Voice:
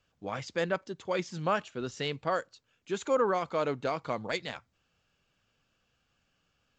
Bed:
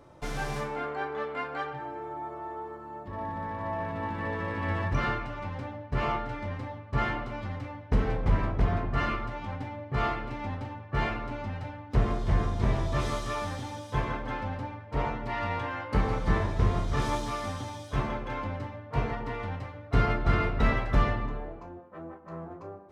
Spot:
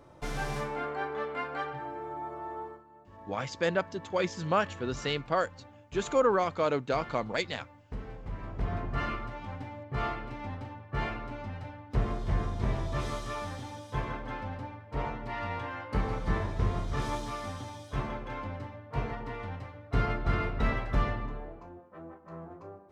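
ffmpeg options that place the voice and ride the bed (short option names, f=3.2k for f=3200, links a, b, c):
-filter_complex "[0:a]adelay=3050,volume=2dB[a];[1:a]volume=9.5dB,afade=t=out:st=2.63:d=0.21:silence=0.211349,afade=t=in:st=8.37:d=0.47:silence=0.298538[b];[a][b]amix=inputs=2:normalize=0"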